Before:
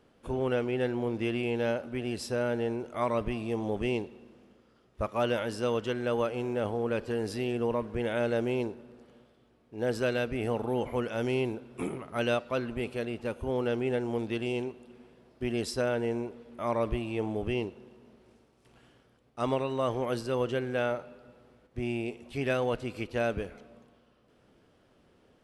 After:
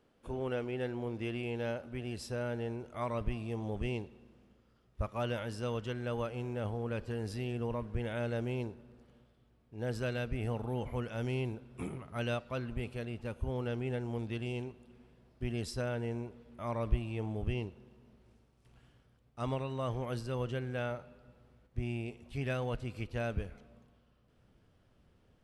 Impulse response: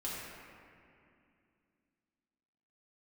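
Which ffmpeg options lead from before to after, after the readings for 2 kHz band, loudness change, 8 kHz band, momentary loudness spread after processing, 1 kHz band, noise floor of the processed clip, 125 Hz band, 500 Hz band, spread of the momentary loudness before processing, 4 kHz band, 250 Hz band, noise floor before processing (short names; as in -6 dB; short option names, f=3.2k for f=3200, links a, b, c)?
-6.5 dB, -6.0 dB, -6.5 dB, 6 LU, -7.0 dB, -69 dBFS, +1.0 dB, -8.5 dB, 7 LU, -6.5 dB, -6.5 dB, -65 dBFS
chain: -af "asubboost=boost=3.5:cutoff=160,volume=-6.5dB"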